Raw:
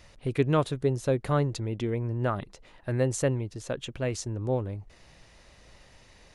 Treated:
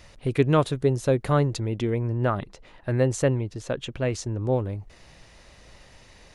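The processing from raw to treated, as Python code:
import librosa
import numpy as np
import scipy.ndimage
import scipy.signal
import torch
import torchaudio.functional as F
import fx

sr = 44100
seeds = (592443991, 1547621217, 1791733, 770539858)

y = fx.high_shelf(x, sr, hz=7700.0, db=-8.5, at=(2.12, 4.52))
y = y * 10.0 ** (4.0 / 20.0)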